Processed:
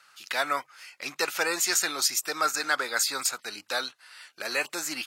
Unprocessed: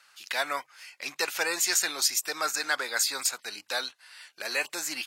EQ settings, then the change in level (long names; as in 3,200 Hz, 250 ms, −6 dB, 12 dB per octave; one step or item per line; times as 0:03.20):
low-shelf EQ 390 Hz +7 dB
parametric band 1,300 Hz +6.5 dB 0.22 octaves
0.0 dB